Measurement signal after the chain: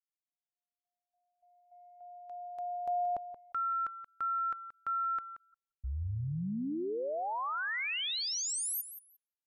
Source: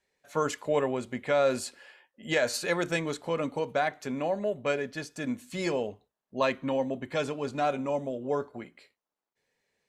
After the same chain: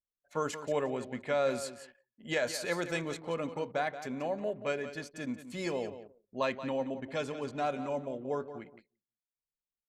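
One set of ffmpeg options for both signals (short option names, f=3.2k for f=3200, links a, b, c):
-af "aecho=1:1:178|356|534:0.251|0.0578|0.0133,anlmdn=0.01,volume=-5dB"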